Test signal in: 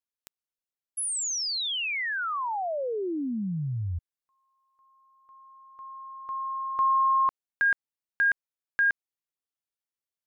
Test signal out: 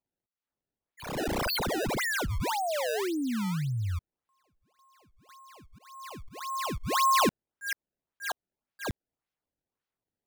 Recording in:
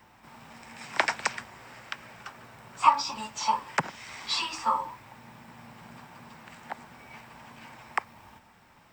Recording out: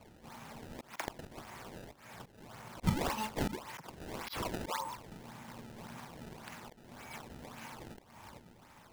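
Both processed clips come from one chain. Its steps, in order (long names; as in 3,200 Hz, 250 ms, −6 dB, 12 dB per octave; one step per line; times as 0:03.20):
volume swells 269 ms
sample-and-hold swept by an LFO 23×, swing 160% 1.8 Hz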